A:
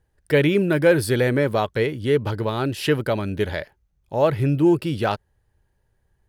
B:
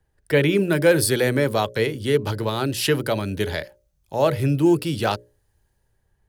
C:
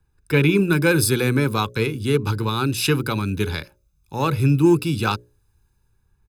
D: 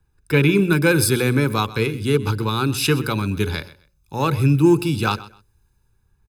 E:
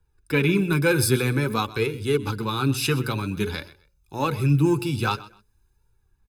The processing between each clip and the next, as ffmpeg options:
-filter_complex "[0:a]bandreject=f=60:t=h:w=6,bandreject=f=120:t=h:w=6,bandreject=f=180:t=h:w=6,bandreject=f=240:t=h:w=6,bandreject=f=300:t=h:w=6,bandreject=f=360:t=h:w=6,bandreject=f=420:t=h:w=6,bandreject=f=480:t=h:w=6,bandreject=f=540:t=h:w=6,bandreject=f=600:t=h:w=6,acrossover=split=150|420|4100[s0][s1][s2][s3];[s3]dynaudnorm=f=110:g=11:m=2.82[s4];[s0][s1][s2][s4]amix=inputs=4:normalize=0"
-af "aeval=exprs='0.596*(cos(1*acos(clip(val(0)/0.596,-1,1)))-cos(1*PI/2))+0.00944*(cos(7*acos(clip(val(0)/0.596,-1,1)))-cos(7*PI/2))':c=same,aecho=1:1:0.8:0.83"
-af "aecho=1:1:128|256:0.126|0.0277,volume=1.12"
-af "flanger=delay=2.1:depth=6.1:regen=38:speed=0.51:shape=sinusoidal"

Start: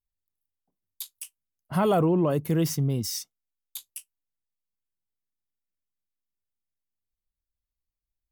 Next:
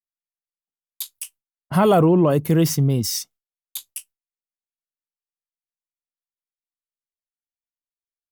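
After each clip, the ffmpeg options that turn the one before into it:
-af "agate=range=0.0224:threshold=0.00355:ratio=3:detection=peak,volume=2.24"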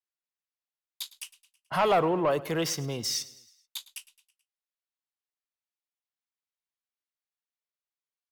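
-filter_complex "[0:a]acrossover=split=520 6100:gain=0.141 1 0.224[s0][s1][s2];[s0][s1][s2]amix=inputs=3:normalize=0,asoftclip=type=tanh:threshold=0.133,aecho=1:1:108|216|324|432:0.112|0.0595|0.0315|0.0167"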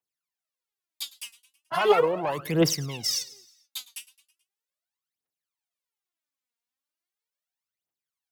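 -af "highpass=110,aphaser=in_gain=1:out_gain=1:delay=4.4:decay=0.79:speed=0.38:type=triangular,volume=0.841"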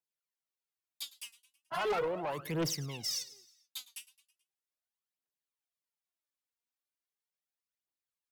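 -af "asoftclip=type=tanh:threshold=0.0841,volume=0.473"

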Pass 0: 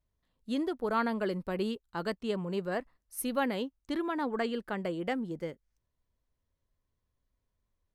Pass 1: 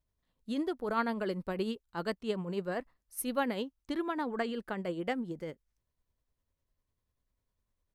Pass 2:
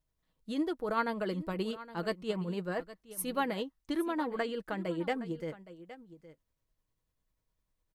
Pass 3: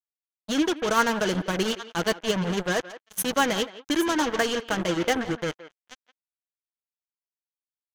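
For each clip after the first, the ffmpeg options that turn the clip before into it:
-af "tremolo=f=10:d=0.41"
-af "aecho=1:1:6.3:0.38,aecho=1:1:816:0.158"
-filter_complex "[0:a]acrusher=bits=5:mix=0:aa=0.5,equalizer=f=1600:t=o:w=0.33:g=5,equalizer=f=3150:t=o:w=0.33:g=7,equalizer=f=6300:t=o:w=0.33:g=11,asplit=2[s0][s1];[s1]adelay=170,highpass=300,lowpass=3400,asoftclip=type=hard:threshold=0.0501,volume=0.178[s2];[s0][s2]amix=inputs=2:normalize=0,volume=2.51"

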